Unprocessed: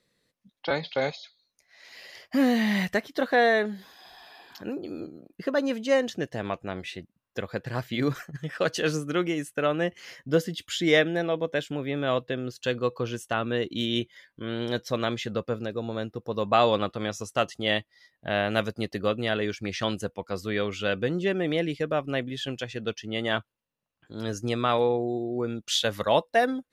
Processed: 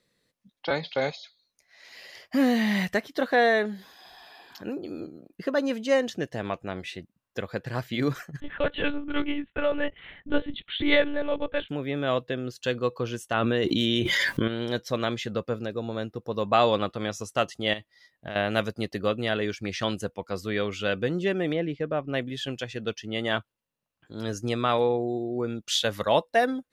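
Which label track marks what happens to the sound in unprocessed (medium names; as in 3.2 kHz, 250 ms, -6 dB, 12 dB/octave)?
8.400000	11.690000	monotone LPC vocoder at 8 kHz 290 Hz
13.340000	14.480000	level flattener amount 100%
17.730000	18.360000	compression 12:1, threshold -30 dBFS
21.530000	22.140000	tape spacing loss at 10 kHz 24 dB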